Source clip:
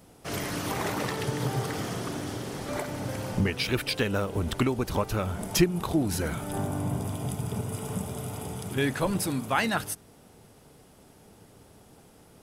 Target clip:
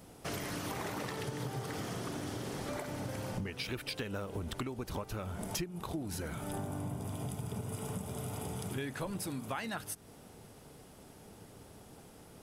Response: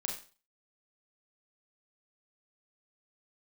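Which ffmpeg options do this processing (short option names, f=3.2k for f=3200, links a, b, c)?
-af "acompressor=threshold=-36dB:ratio=6"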